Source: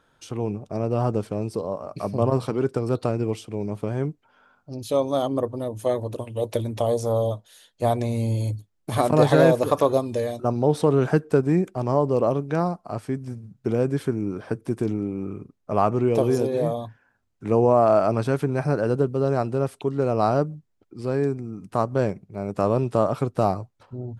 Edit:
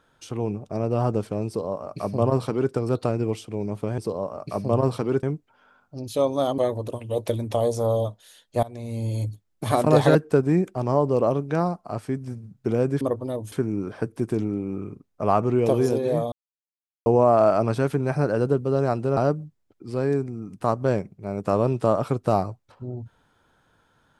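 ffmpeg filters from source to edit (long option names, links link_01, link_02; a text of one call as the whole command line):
ffmpeg -i in.wav -filter_complex "[0:a]asplit=11[link_01][link_02][link_03][link_04][link_05][link_06][link_07][link_08][link_09][link_10][link_11];[link_01]atrim=end=3.982[link_12];[link_02]atrim=start=1.468:end=2.722[link_13];[link_03]atrim=start=3.978:end=5.332[link_14];[link_04]atrim=start=5.838:end=7.89,asetpts=PTS-STARTPTS,afade=type=out:start_time=2.048:duration=0.004:curve=hsin:silence=0.0794328[link_15];[link_05]atrim=start=7.89:end=9.412,asetpts=PTS-STARTPTS,afade=type=in:duration=0.65:silence=0.0794328[link_16];[link_06]atrim=start=11.148:end=14.012[link_17];[link_07]atrim=start=5.328:end=5.842[link_18];[link_08]atrim=start=14.008:end=16.81,asetpts=PTS-STARTPTS,afade=type=out:start_time=2.798:duration=0.004:curve=hsin[link_19];[link_09]atrim=start=16.81:end=17.55,asetpts=PTS-STARTPTS,volume=0[link_20];[link_10]atrim=start=17.55:end=19.662,asetpts=PTS-STARTPTS,afade=type=in:duration=0.004:curve=hsin[link_21];[link_11]atrim=start=20.278[link_22];[link_12][link_13]acrossfade=duration=0.004:curve1=hsin:curve2=hsin[link_23];[link_23][link_14]acrossfade=duration=0.004:curve1=hsin:curve2=hsin[link_24];[link_15][link_16]concat=n=2:v=0:a=1[link_25];[link_24][link_25]acrossfade=duration=0.004:curve1=hsin:curve2=hsin[link_26];[link_26][link_17]acrossfade=duration=0.004:curve1=hsin:curve2=hsin[link_27];[link_27][link_18]acrossfade=duration=0.004:curve1=hsin:curve2=hsin[link_28];[link_19][link_20][link_21]concat=n=3:v=0:a=1[link_29];[link_28][link_29]acrossfade=duration=0.004:curve1=hsin:curve2=hsin[link_30];[link_30][link_22]acrossfade=duration=0.004:curve1=hsin:curve2=hsin" out.wav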